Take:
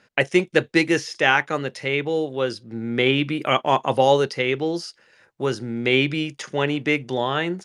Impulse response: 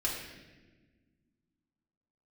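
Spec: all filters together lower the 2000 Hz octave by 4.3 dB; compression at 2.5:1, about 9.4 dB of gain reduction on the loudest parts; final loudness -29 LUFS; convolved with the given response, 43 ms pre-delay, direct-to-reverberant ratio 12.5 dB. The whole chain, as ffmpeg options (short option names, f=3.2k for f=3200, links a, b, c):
-filter_complex "[0:a]equalizer=f=2k:t=o:g=-5.5,acompressor=threshold=-27dB:ratio=2.5,asplit=2[a][b];[1:a]atrim=start_sample=2205,adelay=43[c];[b][c]afir=irnorm=-1:irlink=0,volume=-18dB[d];[a][d]amix=inputs=2:normalize=0,volume=0.5dB"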